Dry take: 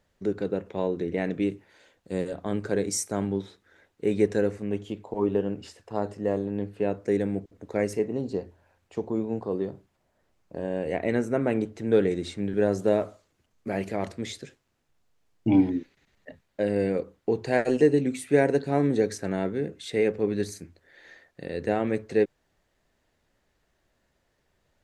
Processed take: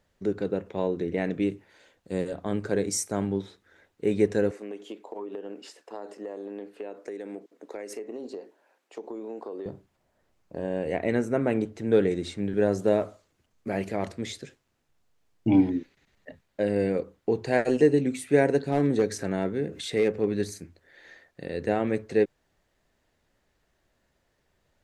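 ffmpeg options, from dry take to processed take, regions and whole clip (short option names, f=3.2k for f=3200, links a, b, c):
-filter_complex "[0:a]asettb=1/sr,asplit=3[a][b][c];[a]atrim=end=4.514[d];[b]atrim=start=4.51:end=9.66,asetpts=PTS-STARTPTS,afade=t=in:d=0.004:c=qsin,afade=t=out:st=5.146:d=0.004:c=qsin,highpass=f=290:w=0.5412,highpass=f=290:w=1.3066,acompressor=threshold=-32dB:ratio=12:attack=3.2:release=140:knee=1:detection=peak[e];[c]atrim=start=9.656[f];[d][e]acrossfade=d=0.004:c1=hsin:c2=qsin[g];[g][f]acrossfade=d=0.004:c1=qsin:c2=hsin,asettb=1/sr,asplit=3[h][i][j];[h]atrim=end=18.684[k];[i]atrim=start=18.68:end=20.43,asetpts=PTS-STARTPTS,afade=t=in:d=0.004:c=qsin,afade=t=out:st=1.746:d=0.004:c=qsin,acompressor=mode=upward:threshold=-28dB:ratio=2.5:attack=3.2:release=140:knee=2.83:detection=peak,asoftclip=type=hard:threshold=-15dB[l];[j]atrim=start=20.426[m];[k][l]acrossfade=d=0.004:c1=hsin:c2=qsin[n];[n][m]acrossfade=d=0.004:c1=qsin:c2=hsin"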